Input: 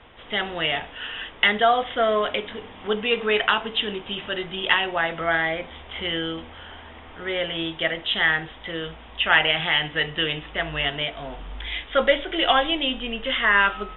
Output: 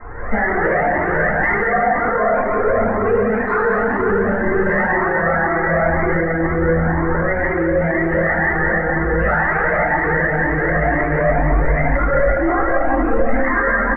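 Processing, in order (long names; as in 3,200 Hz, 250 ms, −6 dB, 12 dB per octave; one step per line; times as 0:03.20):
Butterworth low-pass 1,900 Hz 72 dB per octave
downward compressor, threshold −26 dBFS, peak gain reduction 12 dB
on a send: repeating echo 177 ms, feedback 56%, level −7 dB
on the sum: rectangular room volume 180 cubic metres, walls hard, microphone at 2.1 metres
boost into a limiter +16 dB
flanger whose copies keep moving one way rising 2 Hz
level −3.5 dB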